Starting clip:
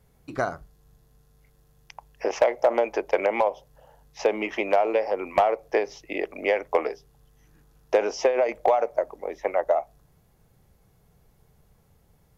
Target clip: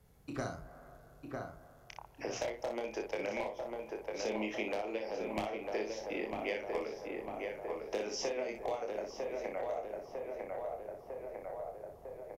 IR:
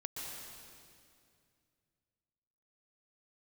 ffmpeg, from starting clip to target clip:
-filter_complex "[0:a]asplit=2[link_01][link_02];[link_02]adelay=951,lowpass=frequency=2400:poles=1,volume=-5.5dB,asplit=2[link_03][link_04];[link_04]adelay=951,lowpass=frequency=2400:poles=1,volume=0.52,asplit=2[link_05][link_06];[link_06]adelay=951,lowpass=frequency=2400:poles=1,volume=0.52,asplit=2[link_07][link_08];[link_08]adelay=951,lowpass=frequency=2400:poles=1,volume=0.52,asplit=2[link_09][link_10];[link_10]adelay=951,lowpass=frequency=2400:poles=1,volume=0.52,asplit=2[link_11][link_12];[link_12]adelay=951,lowpass=frequency=2400:poles=1,volume=0.52,asplit=2[link_13][link_14];[link_14]adelay=951,lowpass=frequency=2400:poles=1,volume=0.52[link_15];[link_01][link_03][link_05][link_07][link_09][link_11][link_13][link_15]amix=inputs=8:normalize=0,asplit=2[link_16][link_17];[1:a]atrim=start_sample=2205,lowpass=2500[link_18];[link_17][link_18]afir=irnorm=-1:irlink=0,volume=-17dB[link_19];[link_16][link_19]amix=inputs=2:normalize=0,acrossover=split=260|3000[link_20][link_21][link_22];[link_21]acompressor=threshold=-39dB:ratio=3[link_23];[link_20][link_23][link_22]amix=inputs=3:normalize=0,asplit=2[link_24][link_25];[link_25]aecho=0:1:28|60:0.531|0.447[link_26];[link_24][link_26]amix=inputs=2:normalize=0,volume=-5dB"

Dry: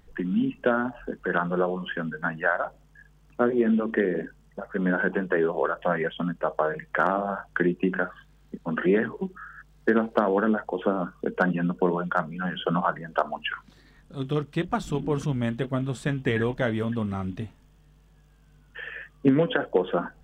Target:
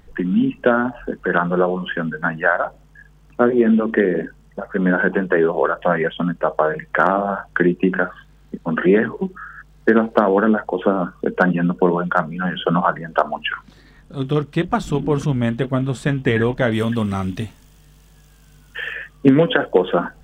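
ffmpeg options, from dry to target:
ffmpeg -i in.wav -af "asetnsamples=nb_out_samples=441:pad=0,asendcmd='16.72 highshelf g 11.5;18.93 highshelf g 4.5',highshelf=frequency=3200:gain=-2,volume=7.5dB" out.wav

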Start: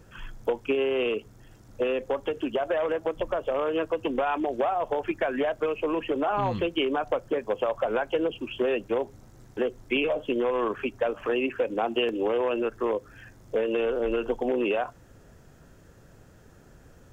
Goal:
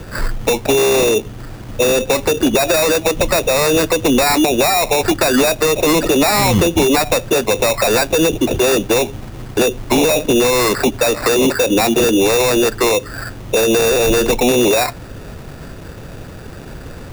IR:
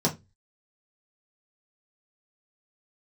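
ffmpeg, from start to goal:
-filter_complex "[0:a]acrusher=samples=14:mix=1:aa=0.000001,apsyclip=28dB,acrossover=split=270|3000[link_01][link_02][link_03];[link_02]acompressor=threshold=-6dB:ratio=6[link_04];[link_01][link_04][link_03]amix=inputs=3:normalize=0,volume=-7dB"

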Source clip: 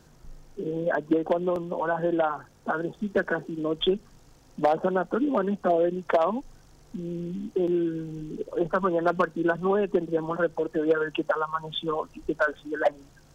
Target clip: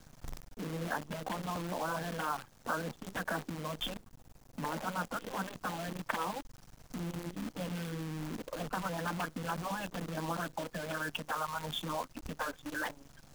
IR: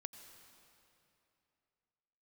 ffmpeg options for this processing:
-filter_complex "[0:a]asettb=1/sr,asplit=3[link_01][link_02][link_03];[link_01]atrim=end=3.944[link_04];[link_02]atrim=start=3.94:end=4.72,asetpts=PTS-STARTPTS,afade=type=in:duration=0.004:curve=qsin,afade=type=out:start_time=0.776:duration=0.004:curve=qsin,equalizer=frequency=3600:width=0.48:gain=-12[link_05];[link_03]atrim=start=4.716[link_06];[link_04][link_05]acrossfade=duration=0.004:curve1=hsin:curve2=qsin[link_07];[link_07][link_06]acrossfade=duration=0.004:curve1=qsin:curve2=hsin,afftfilt=real='re*lt(hypot(re,im),0.251)':imag='im*lt(hypot(re,im),0.251)':win_size=1024:overlap=0.75,asplit=2[link_08][link_09];[link_09]acompressor=threshold=-45dB:ratio=5,volume=2dB[link_10];[link_08][link_10]amix=inputs=2:normalize=0,equalizer=frequency=390:width=3.6:gain=-12,acrusher=bits=7:dc=4:mix=0:aa=0.000001,volume=-4.5dB"

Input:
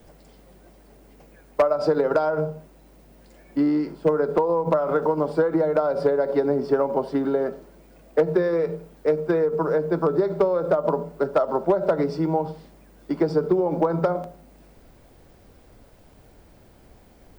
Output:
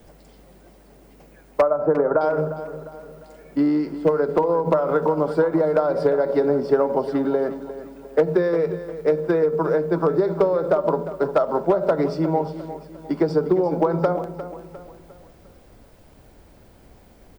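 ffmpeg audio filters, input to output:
ffmpeg -i in.wav -filter_complex "[0:a]asettb=1/sr,asplit=3[link_01][link_02][link_03];[link_01]atrim=end=1.614[link_04];[link_02]atrim=start=1.61:end=2.21,asetpts=PTS-STARTPTS,afade=type=in:duration=0.004:curve=qsin,afade=type=out:start_time=0.596:duration=0.004:curve=qsin,lowpass=frequency=1600:width=0.5412,lowpass=frequency=1600:width=1.3066[link_05];[link_03]atrim=start=2.206[link_06];[link_04][link_05]acrossfade=duration=0.004:curve1=hsin:curve2=qsin[link_07];[link_07][link_06]acrossfade=duration=0.004:curve1=qsin:curve2=hsin,aecho=1:1:353|706|1059|1412:0.224|0.0963|0.0414|0.0178,volume=1.5dB" out.wav

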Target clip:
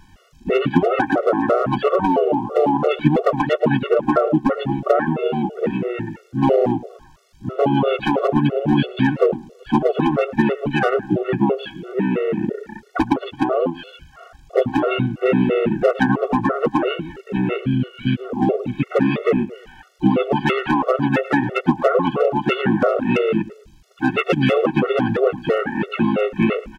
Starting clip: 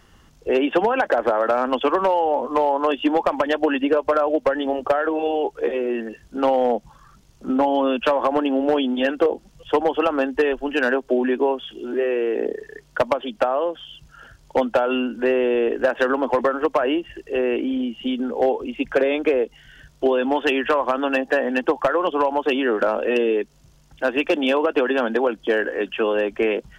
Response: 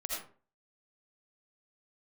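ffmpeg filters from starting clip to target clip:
-filter_complex "[0:a]asplit=4[link_01][link_02][link_03][link_04];[link_02]asetrate=22050,aresample=44100,atempo=2,volume=-1dB[link_05];[link_03]asetrate=35002,aresample=44100,atempo=1.25992,volume=-5dB[link_06];[link_04]asetrate=58866,aresample=44100,atempo=0.749154,volume=-17dB[link_07];[link_01][link_05][link_06][link_07]amix=inputs=4:normalize=0,asplit=2[link_08][link_09];[link_09]adelay=109,lowpass=frequency=3700:poles=1,volume=-17dB,asplit=2[link_10][link_11];[link_11]adelay=109,lowpass=frequency=3700:poles=1,volume=0.32,asplit=2[link_12][link_13];[link_13]adelay=109,lowpass=frequency=3700:poles=1,volume=0.32[link_14];[link_08][link_10][link_12][link_14]amix=inputs=4:normalize=0,afftfilt=real='re*gt(sin(2*PI*3*pts/sr)*(1-2*mod(floor(b*sr/1024/370),2)),0)':imag='im*gt(sin(2*PI*3*pts/sr)*(1-2*mod(floor(b*sr/1024/370),2)),0)':win_size=1024:overlap=0.75,volume=2dB"

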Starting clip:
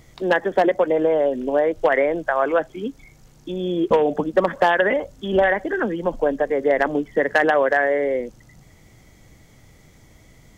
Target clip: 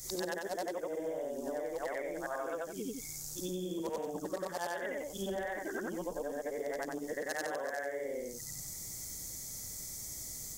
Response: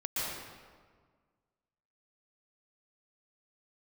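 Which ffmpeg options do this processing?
-af "afftfilt=real='re':imag='-im':win_size=8192:overlap=0.75,acompressor=threshold=-36dB:ratio=6,aexciter=amount=10:drive=7.5:freq=4500"

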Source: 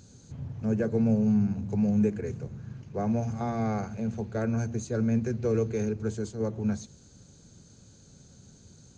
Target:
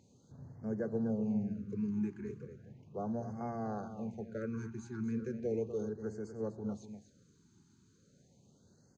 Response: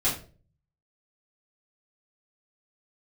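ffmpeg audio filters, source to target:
-af "highpass=frequency=260:poles=1,highshelf=frequency=2300:gain=-11.5,aecho=1:1:244:0.299,afftfilt=real='re*(1-between(b*sr/1024,570*pow(3100/570,0.5+0.5*sin(2*PI*0.36*pts/sr))/1.41,570*pow(3100/570,0.5+0.5*sin(2*PI*0.36*pts/sr))*1.41))':imag='im*(1-between(b*sr/1024,570*pow(3100/570,0.5+0.5*sin(2*PI*0.36*pts/sr))/1.41,570*pow(3100/570,0.5+0.5*sin(2*PI*0.36*pts/sr))*1.41))':win_size=1024:overlap=0.75,volume=-6dB"

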